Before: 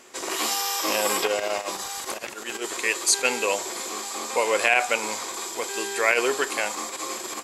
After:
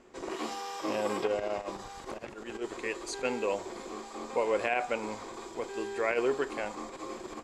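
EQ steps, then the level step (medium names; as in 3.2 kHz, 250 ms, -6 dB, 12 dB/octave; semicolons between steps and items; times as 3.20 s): low-pass 9.3 kHz 12 dB/octave; tilt EQ -4 dB/octave; -8.5 dB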